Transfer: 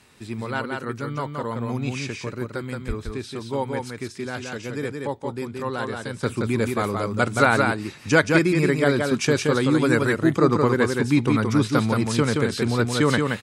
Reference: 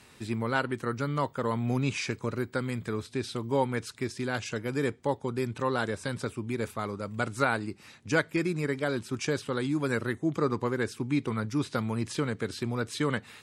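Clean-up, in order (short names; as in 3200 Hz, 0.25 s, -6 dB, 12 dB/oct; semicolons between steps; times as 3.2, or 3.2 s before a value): de-plosive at 2.87; inverse comb 0.174 s -4 dB; gain 0 dB, from 6.23 s -8.5 dB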